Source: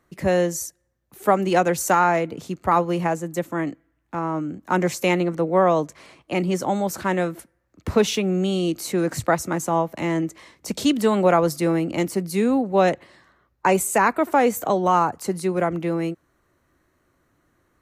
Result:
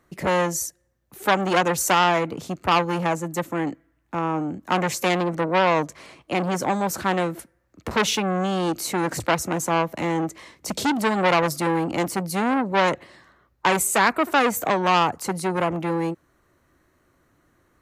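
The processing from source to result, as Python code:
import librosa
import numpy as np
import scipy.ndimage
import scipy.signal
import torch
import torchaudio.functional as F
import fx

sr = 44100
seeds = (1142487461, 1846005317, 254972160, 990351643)

y = fx.transformer_sat(x, sr, knee_hz=1800.0)
y = y * librosa.db_to_amplitude(2.5)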